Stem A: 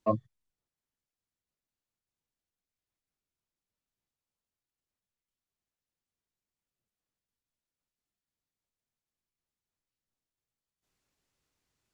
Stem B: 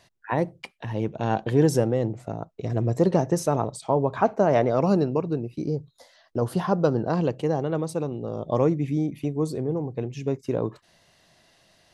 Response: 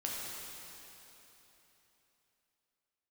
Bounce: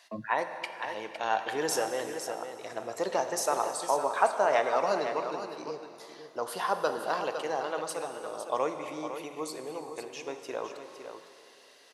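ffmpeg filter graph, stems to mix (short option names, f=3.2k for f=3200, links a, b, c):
-filter_complex "[0:a]highpass=f=150:w=0.5412,highpass=f=150:w=1.3066,acrossover=split=240|3000[a][b][c];[b]acompressor=threshold=-42dB:ratio=2.5[d];[a][d][c]amix=inputs=3:normalize=0,adelay=50,volume=-4dB,asplit=2[e][f];[f]volume=-21.5dB[g];[1:a]highpass=900,volume=-0.5dB,asplit=3[h][i][j];[i]volume=-6dB[k];[j]volume=-6dB[l];[2:a]atrim=start_sample=2205[m];[g][k]amix=inputs=2:normalize=0[n];[n][m]afir=irnorm=-1:irlink=0[o];[l]aecho=0:1:508:1[p];[e][h][o][p]amix=inputs=4:normalize=0"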